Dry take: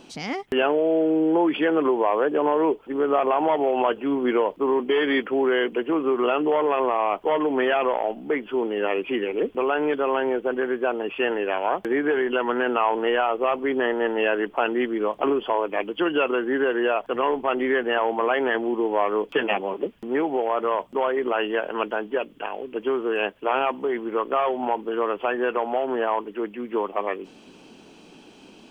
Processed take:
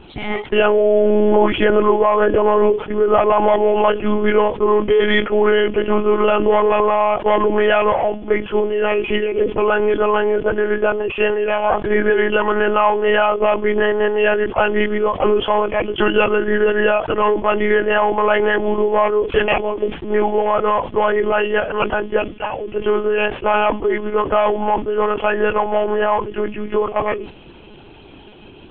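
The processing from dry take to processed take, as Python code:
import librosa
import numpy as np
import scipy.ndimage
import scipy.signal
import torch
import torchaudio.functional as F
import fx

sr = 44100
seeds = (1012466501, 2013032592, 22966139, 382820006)

y = fx.lpc_monotone(x, sr, seeds[0], pitch_hz=210.0, order=16)
y = fx.sustainer(y, sr, db_per_s=130.0)
y = y * 10.0 ** (7.0 / 20.0)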